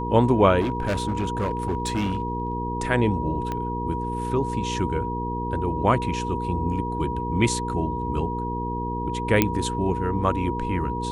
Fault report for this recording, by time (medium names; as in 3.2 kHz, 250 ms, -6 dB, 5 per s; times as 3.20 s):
hum 60 Hz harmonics 8 -30 dBFS
whine 960 Hz -29 dBFS
0.60–2.53 s: clipped -20.5 dBFS
3.52 s: pop -16 dBFS
9.42 s: pop -3 dBFS